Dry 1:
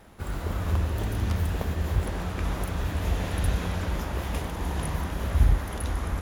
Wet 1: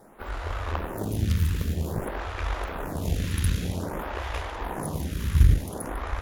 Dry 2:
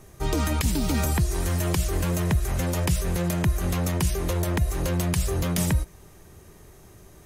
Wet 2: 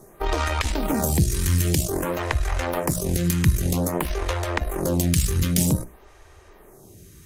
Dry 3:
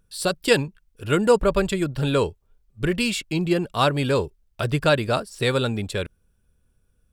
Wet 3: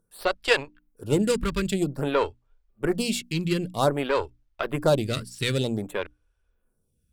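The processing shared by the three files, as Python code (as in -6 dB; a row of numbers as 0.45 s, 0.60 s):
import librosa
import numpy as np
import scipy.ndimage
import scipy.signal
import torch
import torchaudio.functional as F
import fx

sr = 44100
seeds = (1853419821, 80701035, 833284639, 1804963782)

y = fx.cheby_harmonics(x, sr, harmonics=(7, 8), levels_db=(-32, -24), full_scale_db=-5.5)
y = fx.hum_notches(y, sr, base_hz=60, count=5)
y = fx.stagger_phaser(y, sr, hz=0.52)
y = librosa.util.normalize(y) * 10.0 ** (-6 / 20.0)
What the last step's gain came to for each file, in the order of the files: +5.0 dB, +7.0 dB, +1.0 dB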